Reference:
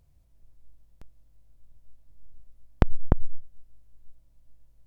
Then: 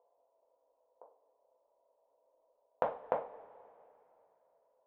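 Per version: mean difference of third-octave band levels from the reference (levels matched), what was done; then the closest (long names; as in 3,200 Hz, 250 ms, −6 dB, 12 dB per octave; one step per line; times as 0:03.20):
13.0 dB: elliptic band-pass filter 450–990 Hz, stop band 60 dB
downward compressor, threshold −37 dBFS, peak gain reduction 11.5 dB
coupled-rooms reverb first 0.32 s, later 2.9 s, from −22 dB, DRR −2 dB
level +7 dB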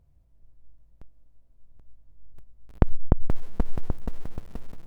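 2.0 dB: high-shelf EQ 2,000 Hz −11.5 dB
single-tap delay 781 ms −8.5 dB
feedback echo at a low word length 478 ms, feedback 55%, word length 7 bits, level −8 dB
level +1 dB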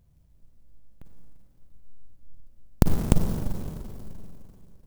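18.5 dB: parametric band 180 Hz +7 dB 1.5 octaves
four-comb reverb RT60 2.9 s, DRR 1.5 dB
converter with an unsteady clock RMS 0.09 ms
level −1 dB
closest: second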